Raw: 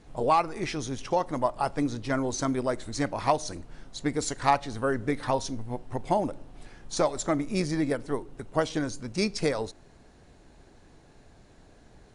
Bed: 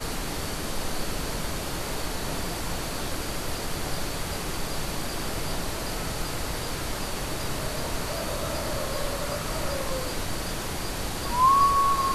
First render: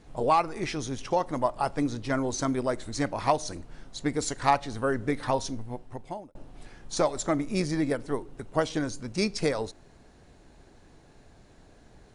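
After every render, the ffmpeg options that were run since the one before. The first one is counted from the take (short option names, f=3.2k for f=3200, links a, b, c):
-filter_complex "[0:a]asplit=2[a][b];[a]atrim=end=6.35,asetpts=PTS-STARTPTS,afade=t=out:st=5.5:d=0.85[c];[b]atrim=start=6.35,asetpts=PTS-STARTPTS,afade=t=in:d=0.004:c=hsin[d];[c][d]concat=n=2:v=0:a=1"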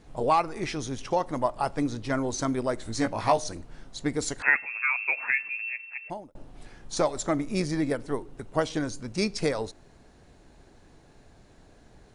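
-filter_complex "[0:a]asettb=1/sr,asplit=3[a][b][c];[a]atrim=end=2.834[d];[b]atrim=start=2.83:end=3.48,asetpts=PTS-STARTPTS,afade=t=in:d=0.004:c=qsin,afade=t=out:st=0.646:d=0.004:c=qsin,asplit=2[e][f];[f]adelay=18,volume=-4.5dB[g];[e][g]amix=inputs=2:normalize=0,atrim=end_sample=28665[h];[c]atrim=start=3.476[i];[d][h]acrossfade=d=0.004:c1=hsin:c2=qsin[j];[j][i]acrossfade=d=0.004:c1=qsin:c2=hsin,asettb=1/sr,asplit=3[k][l][m];[k]atrim=end=4.424[n];[l]atrim=start=4.42:end=6.1,asetpts=PTS-STARTPTS,afade=t=in:d=0.004:c=qsin,afade=t=out:st=1.676:d=0.004:c=qsin,lowpass=f=2.3k:t=q:w=0.5098,lowpass=f=2.3k:t=q:w=0.6013,lowpass=f=2.3k:t=q:w=0.9,lowpass=f=2.3k:t=q:w=2.563,afreqshift=-2700[o];[m]atrim=start=6.096[p];[n][o]acrossfade=d=0.004:c1=hsin:c2=qsin[q];[q][p]acrossfade=d=0.004:c1=qsin:c2=hsin"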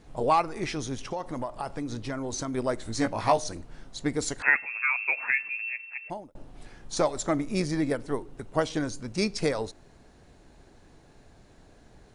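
-filter_complex "[0:a]asplit=3[a][b][c];[a]afade=t=out:st=1.09:d=0.02[d];[b]acompressor=threshold=-28dB:ratio=6:attack=3.2:release=140:knee=1:detection=peak,afade=t=in:st=1.09:d=0.02,afade=t=out:st=2.53:d=0.02[e];[c]afade=t=in:st=2.53:d=0.02[f];[d][e][f]amix=inputs=3:normalize=0"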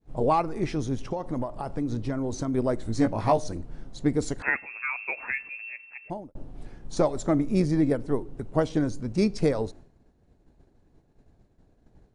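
-af "agate=range=-33dB:threshold=-45dB:ratio=3:detection=peak,tiltshelf=f=750:g=6.5"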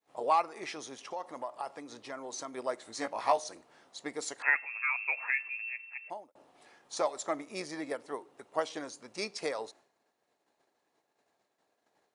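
-af "highpass=830,bandreject=f=1.5k:w=14"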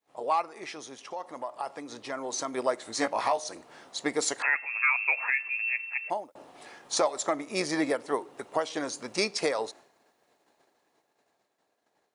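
-af "dynaudnorm=f=470:g=9:m=12.5dB,alimiter=limit=-14.5dB:level=0:latency=1:release=429"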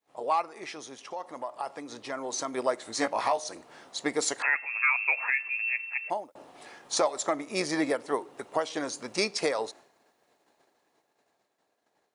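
-af anull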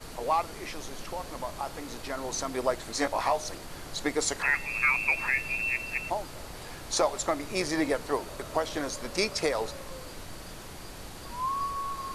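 -filter_complex "[1:a]volume=-12dB[a];[0:a][a]amix=inputs=2:normalize=0"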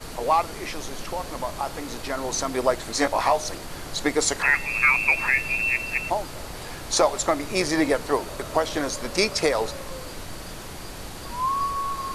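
-af "volume=6dB"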